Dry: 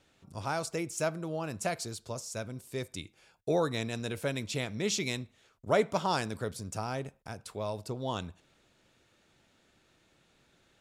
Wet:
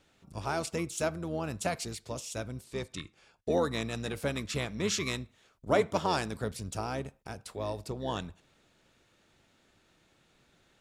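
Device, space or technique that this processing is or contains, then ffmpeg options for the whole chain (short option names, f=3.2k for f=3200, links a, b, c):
octave pedal: -filter_complex "[0:a]asplit=2[a][b];[b]asetrate=22050,aresample=44100,atempo=2,volume=-9dB[c];[a][c]amix=inputs=2:normalize=0,asettb=1/sr,asplit=3[d][e][f];[d]atrim=end=2.644[g];[e]atrim=start=2.64:end=3.51,asetpts=PTS-STARTPTS,afade=t=in:d=0.004:c=qsin,afade=t=out:st=0.866:d=0.004:c=qsin,lowpass=8.2k[h];[f]atrim=start=3.506[i];[g][h]acrossfade=d=0.004:c1=hsin:c2=qsin[j];[j][i]acrossfade=d=0.004:c1=qsin:c2=hsin"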